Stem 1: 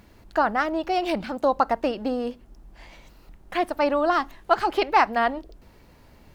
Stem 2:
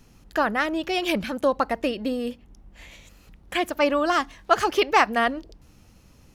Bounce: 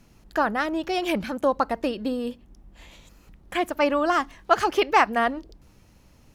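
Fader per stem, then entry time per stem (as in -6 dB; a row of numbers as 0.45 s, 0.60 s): -9.5 dB, -3.0 dB; 0.00 s, 0.00 s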